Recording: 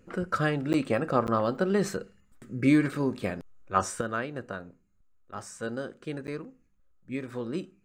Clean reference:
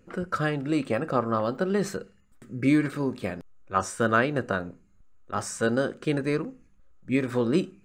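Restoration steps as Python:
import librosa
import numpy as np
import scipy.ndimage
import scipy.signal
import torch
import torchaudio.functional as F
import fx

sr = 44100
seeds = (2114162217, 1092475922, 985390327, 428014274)

y = fx.fix_interpolate(x, sr, at_s=(0.73, 1.27, 6.27), length_ms=9.8)
y = fx.gain(y, sr, db=fx.steps((0.0, 0.0), (4.01, 9.5)))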